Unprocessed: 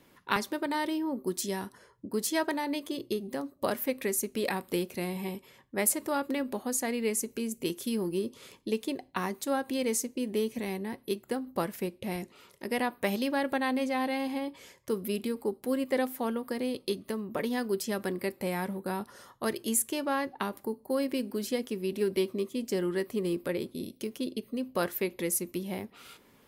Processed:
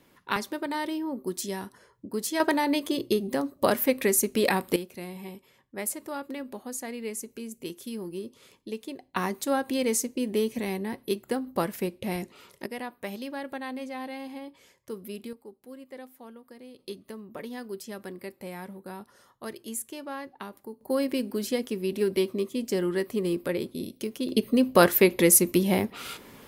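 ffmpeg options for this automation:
ffmpeg -i in.wav -af "asetnsamples=nb_out_samples=441:pad=0,asendcmd='2.4 volume volume 7dB;4.76 volume volume -5dB;9.14 volume volume 3.5dB;12.66 volume volume -6.5dB;15.33 volume volume -15dB;16.79 volume volume -7dB;20.81 volume volume 3dB;24.29 volume volume 12dB',volume=0dB" out.wav

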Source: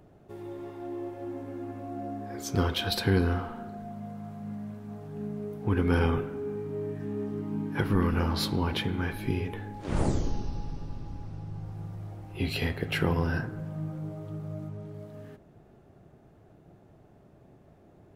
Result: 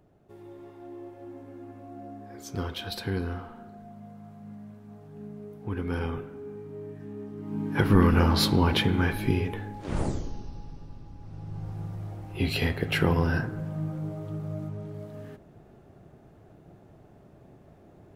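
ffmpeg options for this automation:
ffmpeg -i in.wav -af "volume=15dB,afade=type=in:start_time=7.37:duration=0.56:silence=0.251189,afade=type=out:start_time=9.02:duration=1.26:silence=0.251189,afade=type=in:start_time=11.18:duration=0.5:silence=0.354813" out.wav

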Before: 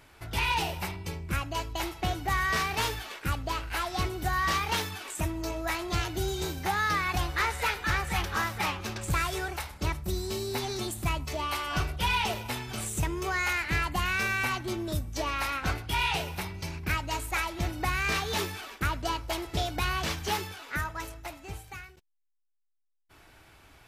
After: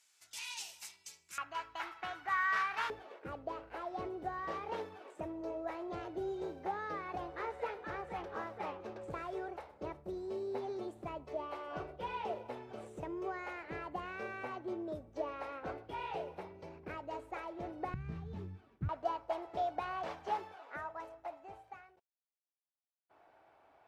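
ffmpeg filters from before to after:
ffmpeg -i in.wav -af "asetnsamples=nb_out_samples=441:pad=0,asendcmd='1.38 bandpass f 1400;2.9 bandpass f 510;17.94 bandpass f 130;18.89 bandpass f 690',bandpass=frequency=7000:width_type=q:width=2.3:csg=0" out.wav

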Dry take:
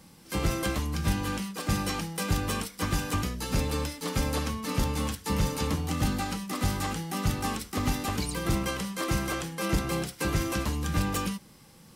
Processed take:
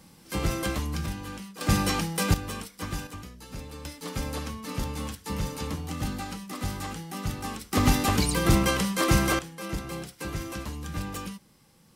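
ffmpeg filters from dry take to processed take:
ffmpeg -i in.wav -af "asetnsamples=nb_out_samples=441:pad=0,asendcmd='1.06 volume volume -7dB;1.61 volume volume 4.5dB;2.34 volume volume -5dB;3.07 volume volume -12dB;3.85 volume volume -4dB;7.72 volume volume 6.5dB;9.39 volume volume -6dB',volume=0dB" out.wav

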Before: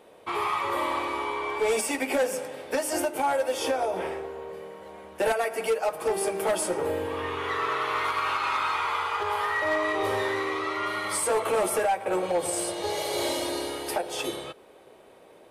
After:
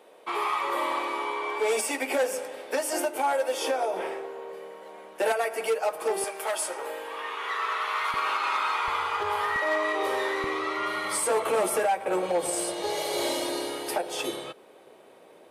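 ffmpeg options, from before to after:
ffmpeg -i in.wav -af "asetnsamples=nb_out_samples=441:pad=0,asendcmd='6.24 highpass f 750;8.14 highpass f 330;8.88 highpass f 80;9.56 highpass f 320;10.44 highpass f 150',highpass=310" out.wav

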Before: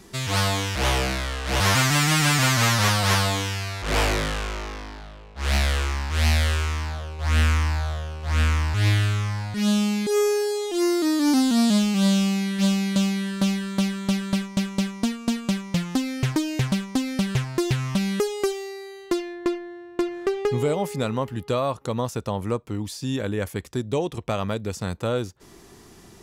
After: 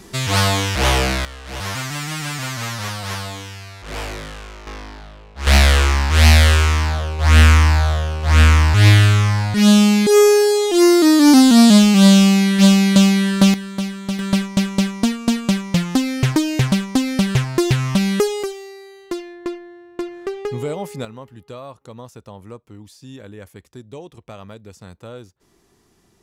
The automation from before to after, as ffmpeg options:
ffmpeg -i in.wav -af "asetnsamples=nb_out_samples=441:pad=0,asendcmd='1.25 volume volume -6.5dB;4.67 volume volume 2dB;5.47 volume volume 10dB;13.54 volume volume -0.5dB;14.19 volume volume 6.5dB;18.43 volume volume -2dB;21.05 volume volume -11dB',volume=6dB" out.wav

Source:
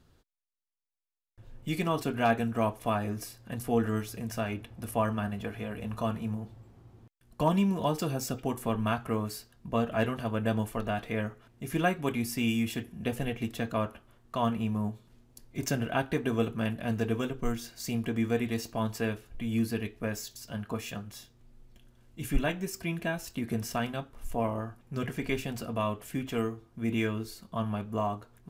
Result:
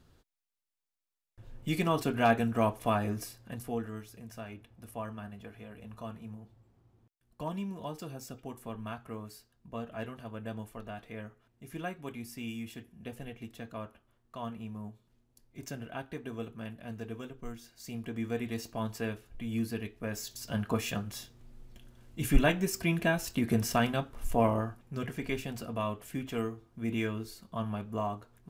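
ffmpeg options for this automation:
ffmpeg -i in.wav -af "volume=15.5dB,afade=type=out:start_time=3.1:duration=0.78:silence=0.266073,afade=type=in:start_time=17.68:duration=0.94:silence=0.446684,afade=type=in:start_time=20.06:duration=0.48:silence=0.398107,afade=type=out:start_time=24.53:duration=0.44:silence=0.446684" out.wav

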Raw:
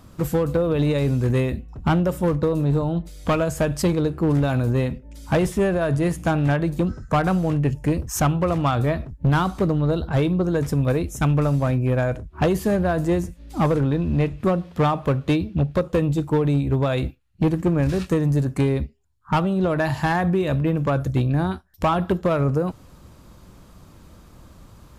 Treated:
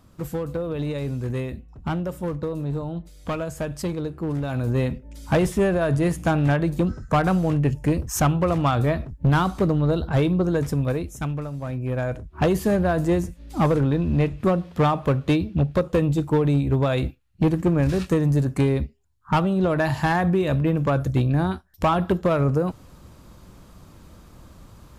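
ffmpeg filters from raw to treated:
ffmpeg -i in.wav -af "volume=12.5dB,afade=type=in:start_time=4.45:duration=0.42:silence=0.446684,afade=type=out:start_time=10.47:duration=1.04:silence=0.237137,afade=type=in:start_time=11.51:duration=1.02:silence=0.237137" out.wav

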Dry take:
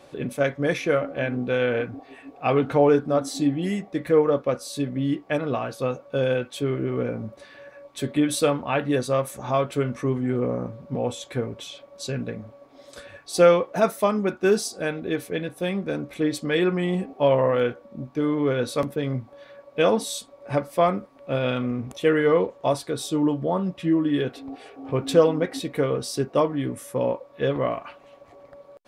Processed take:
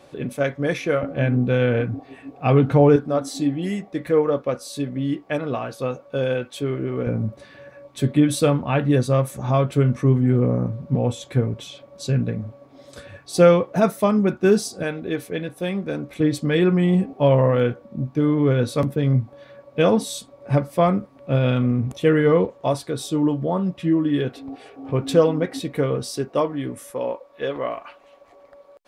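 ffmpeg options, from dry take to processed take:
ffmpeg -i in.wav -af "asetnsamples=nb_out_samples=441:pad=0,asendcmd='1.03 equalizer g 12.5;2.96 equalizer g 1;7.07 equalizer g 11.5;14.83 equalizer g 2.5;16.2 equalizer g 11;22.45 equalizer g 5;26.1 equalizer g -1.5;26.9 equalizer g -11',equalizer=frequency=120:width_type=o:width=2.1:gain=2.5" out.wav

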